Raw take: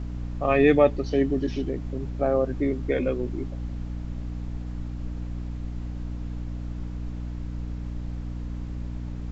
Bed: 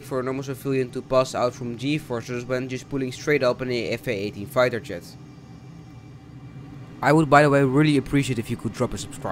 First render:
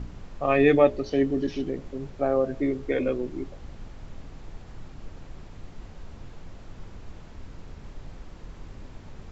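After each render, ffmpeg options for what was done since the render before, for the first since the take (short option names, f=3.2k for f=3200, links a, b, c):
-af "bandreject=f=60:t=h:w=4,bandreject=f=120:t=h:w=4,bandreject=f=180:t=h:w=4,bandreject=f=240:t=h:w=4,bandreject=f=300:t=h:w=4,bandreject=f=360:t=h:w=4,bandreject=f=420:t=h:w=4,bandreject=f=480:t=h:w=4,bandreject=f=540:t=h:w=4,bandreject=f=600:t=h:w=4,bandreject=f=660:t=h:w=4"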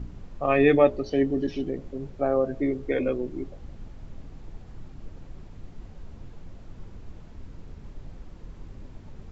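-af "afftdn=nr=6:nf=-46"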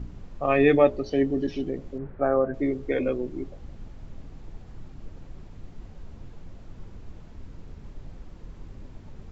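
-filter_complex "[0:a]asettb=1/sr,asplit=3[a][b][c];[a]atrim=end=1.984[d];[b]atrim=start=1.98:end=2.54,asetpts=PTS-STARTPTS,afade=t=in:d=0.004:c=qsin,afade=t=out:st=0.556:d=0.004:c=qsin,lowpass=f=1.6k:t=q:w=2[e];[c]atrim=start=2.536[f];[d][e]acrossfade=d=0.004:c1=hsin:c2=qsin[g];[g][f]acrossfade=d=0.004:c1=qsin:c2=hsin"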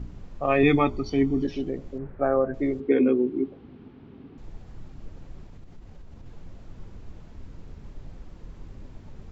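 -filter_complex "[0:a]asettb=1/sr,asplit=3[a][b][c];[a]atrim=end=0.634[d];[b]atrim=start=0.63:end=1.45,asetpts=PTS-STARTPTS,afade=t=in:d=0.004:c=qsin,afade=t=out:st=0.816:d=0.004:c=qsin,aecho=1:1:0.9:0.78,atrim=end_sample=36162[e];[c]atrim=start=1.446[f];[d][e]acrossfade=d=0.004:c1=hsin:c2=qsin[g];[g][f]acrossfade=d=0.004:c1=qsin:c2=hsin,asettb=1/sr,asplit=3[h][i][j];[h]atrim=end=2.804[k];[i]atrim=start=2.8:end=4.38,asetpts=PTS-STARTPTS,afade=t=in:d=0.004:c=qsin,afade=t=out:st=1.576:d=0.004:c=qsin,highpass=130,equalizer=f=260:t=q:w=4:g=10,equalizer=f=400:t=q:w=4:g=9,equalizer=f=590:t=q:w=4:g=-9,equalizer=f=1.9k:t=q:w=4:g=-3,lowpass=f=3.5k:w=0.5412,lowpass=f=3.5k:w=1.3066[l];[j]atrim=start=4.376[m];[k][l]acrossfade=d=0.004:c1=hsin:c2=qsin[n];[n][m]acrossfade=d=0.004:c1=qsin:c2=hsin,asettb=1/sr,asplit=3[o][p][q];[o]atrim=end=5.444[r];[p]atrim=start=5.44:end=6.26,asetpts=PTS-STARTPTS,afade=t=in:d=0.004:c=qsin,afade=t=out:st=0.816:d=0.004:c=qsin,acompressor=threshold=-39dB:ratio=6:attack=3.2:release=140:knee=1:detection=peak[s];[q]atrim=start=6.256[t];[r][s]acrossfade=d=0.004:c1=hsin:c2=qsin[u];[u][t]acrossfade=d=0.004:c1=qsin:c2=hsin"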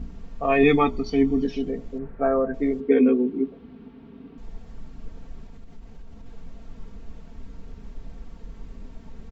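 -af "aecho=1:1:4.4:0.67"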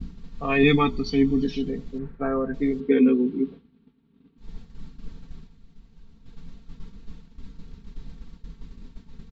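-af "agate=range=-33dB:threshold=-32dB:ratio=3:detection=peak,equalizer=f=160:t=o:w=0.67:g=6,equalizer=f=630:t=o:w=0.67:g=-10,equalizer=f=4k:t=o:w=0.67:g=8"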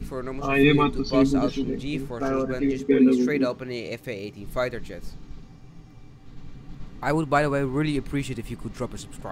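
-filter_complex "[1:a]volume=-6.5dB[a];[0:a][a]amix=inputs=2:normalize=0"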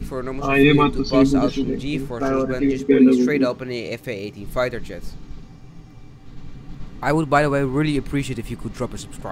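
-af "volume=4.5dB,alimiter=limit=-3dB:level=0:latency=1"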